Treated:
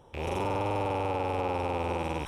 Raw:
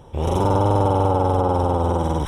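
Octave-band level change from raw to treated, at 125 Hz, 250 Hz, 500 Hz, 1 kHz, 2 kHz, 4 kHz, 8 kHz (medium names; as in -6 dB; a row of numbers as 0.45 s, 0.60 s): -15.5 dB, -12.0 dB, -10.5 dB, -10.0 dB, +1.5 dB, -5.0 dB, no reading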